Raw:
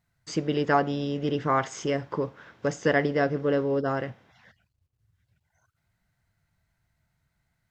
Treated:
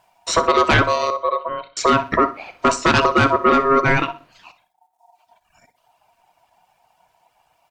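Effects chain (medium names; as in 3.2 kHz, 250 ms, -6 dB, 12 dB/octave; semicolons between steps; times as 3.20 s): reverb removal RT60 1.2 s; in parallel at -1 dB: peak limiter -19.5 dBFS, peak gain reduction 10 dB; 1.10–1.77 s: on the sum: cascade formant filter i; sine folder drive 9 dB, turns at -7 dBFS; ring modulator 820 Hz; feedback delay 62 ms, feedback 27%, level -15 dB; on a send at -17 dB: reverberation RT60 0.35 s, pre-delay 3 ms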